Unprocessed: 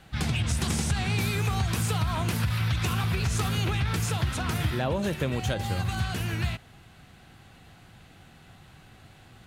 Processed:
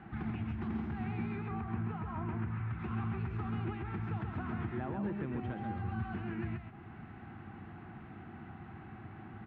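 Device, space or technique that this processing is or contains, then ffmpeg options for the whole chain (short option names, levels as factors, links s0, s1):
bass amplifier: -filter_complex "[0:a]acompressor=threshold=0.00891:ratio=4,highpass=67,equalizer=f=96:t=q:w=4:g=4,equalizer=f=220:t=q:w=4:g=10,equalizer=f=340:t=q:w=4:g=9,equalizer=f=540:t=q:w=4:g=-9,equalizer=f=810:t=q:w=4:g=5,equalizer=f=1200:t=q:w=4:g=3,lowpass=f=2100:w=0.5412,lowpass=f=2100:w=1.3066,asettb=1/sr,asplit=3[s0][s1][s2];[s0]atrim=end=1.514[s3];[s1]atrim=start=1.51:end=2.79,asetpts=PTS-STARTPTS,afade=t=in:d=0.004:c=qsin,afade=t=out:st=1.276:d=0.004:c=qsin,lowpass=2800[s4];[s2]atrim=start=2.786[s5];[s3][s4]acrossfade=d=0.004:c1=hsin:c2=qsin[s6];[s6][s5]acrossfade=d=0.004:c1=qsin:c2=hsin,aecho=1:1:133:0.596"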